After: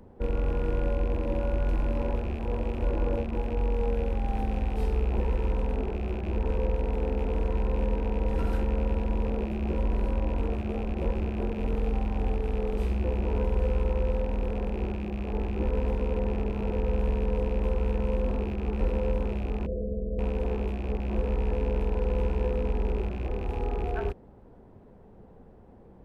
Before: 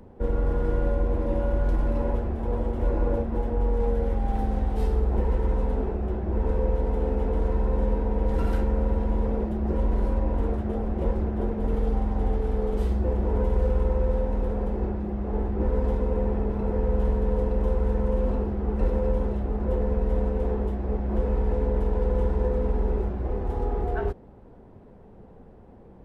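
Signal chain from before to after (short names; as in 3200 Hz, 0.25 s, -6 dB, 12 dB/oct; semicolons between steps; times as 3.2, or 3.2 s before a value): rattling part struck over -32 dBFS, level -32 dBFS; 19.66–20.19 rippled Chebyshev low-pass 670 Hz, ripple 6 dB; gain -3 dB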